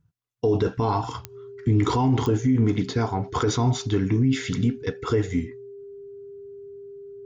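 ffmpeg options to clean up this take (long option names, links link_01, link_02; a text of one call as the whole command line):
ffmpeg -i in.wav -af "adeclick=threshold=4,bandreject=frequency=400:width=30" out.wav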